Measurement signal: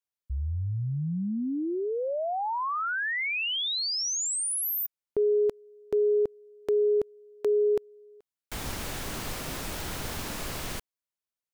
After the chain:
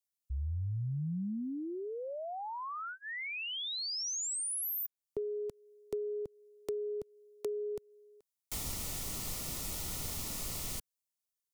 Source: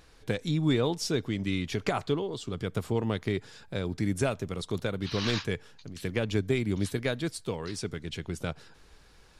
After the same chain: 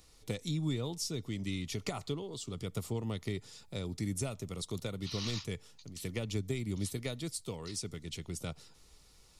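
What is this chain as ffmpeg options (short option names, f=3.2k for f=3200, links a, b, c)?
-filter_complex "[0:a]bass=f=250:g=3,treble=f=4k:g=12,acrossover=split=200[a][b];[b]acompressor=threshold=-32dB:ratio=3:attack=90:release=490:knee=2.83:detection=peak[c];[a][c]amix=inputs=2:normalize=0,asuperstop=centerf=1600:order=4:qfactor=6,volume=-8dB"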